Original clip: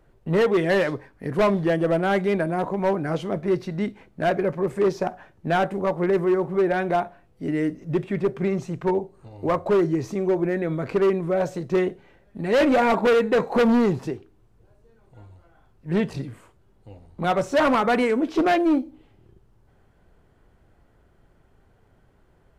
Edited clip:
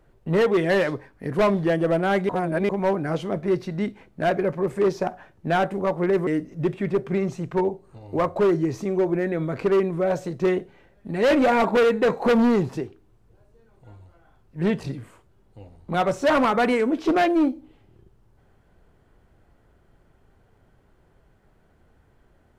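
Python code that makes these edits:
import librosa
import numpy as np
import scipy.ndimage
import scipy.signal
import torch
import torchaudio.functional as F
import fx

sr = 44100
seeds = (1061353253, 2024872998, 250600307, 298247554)

y = fx.edit(x, sr, fx.reverse_span(start_s=2.29, length_s=0.4),
    fx.cut(start_s=6.27, length_s=1.3), tone=tone)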